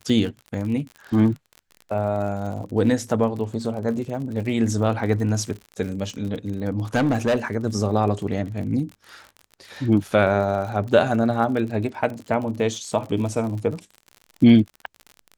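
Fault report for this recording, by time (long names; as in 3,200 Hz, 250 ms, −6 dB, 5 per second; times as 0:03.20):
surface crackle 49 per second −31 dBFS
0:06.95–0:07.37: clipping −15.5 dBFS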